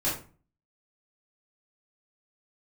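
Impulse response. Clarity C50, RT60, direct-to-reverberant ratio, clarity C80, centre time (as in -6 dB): 5.5 dB, 0.40 s, -10.0 dB, 10.5 dB, 36 ms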